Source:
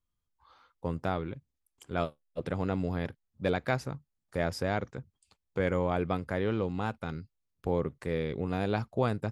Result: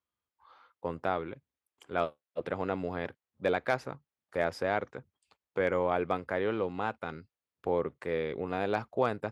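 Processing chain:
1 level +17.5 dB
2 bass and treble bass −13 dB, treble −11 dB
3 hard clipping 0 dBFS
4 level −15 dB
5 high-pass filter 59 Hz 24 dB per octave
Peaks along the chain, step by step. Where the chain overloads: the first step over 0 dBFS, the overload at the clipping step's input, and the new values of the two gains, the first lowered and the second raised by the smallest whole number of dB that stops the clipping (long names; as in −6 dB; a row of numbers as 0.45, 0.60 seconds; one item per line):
+4.5, +4.0, 0.0, −15.0, −14.5 dBFS
step 1, 4.0 dB
step 1 +13.5 dB, step 4 −11 dB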